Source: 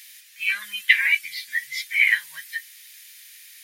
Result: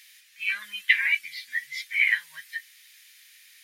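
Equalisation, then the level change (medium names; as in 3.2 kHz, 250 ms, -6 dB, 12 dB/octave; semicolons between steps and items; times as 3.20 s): treble shelf 6.3 kHz -8.5 dB; -3.0 dB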